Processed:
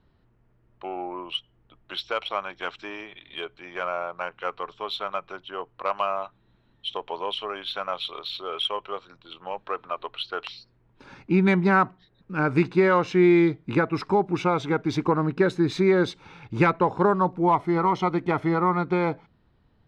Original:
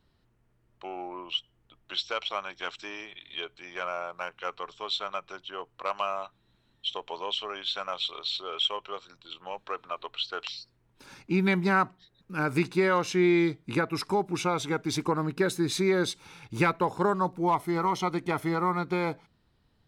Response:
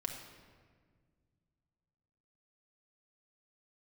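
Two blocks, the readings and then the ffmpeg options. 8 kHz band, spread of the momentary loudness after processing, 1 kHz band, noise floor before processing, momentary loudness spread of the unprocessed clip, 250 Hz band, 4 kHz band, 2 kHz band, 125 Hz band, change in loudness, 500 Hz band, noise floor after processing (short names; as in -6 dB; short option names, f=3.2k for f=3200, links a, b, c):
n/a, 16 LU, +4.5 dB, -69 dBFS, 14 LU, +5.5 dB, -1.0 dB, +3.0 dB, +5.5 dB, +4.5 dB, +5.5 dB, -64 dBFS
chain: -af "aemphasis=mode=reproduction:type=75kf,adynamicsmooth=sensitivity=3:basefreq=6.5k,volume=5.5dB"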